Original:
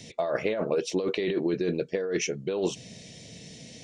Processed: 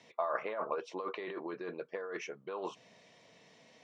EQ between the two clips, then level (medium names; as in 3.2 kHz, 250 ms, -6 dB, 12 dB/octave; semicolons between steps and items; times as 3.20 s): band-pass filter 1.1 kHz, Q 3.9; +6.0 dB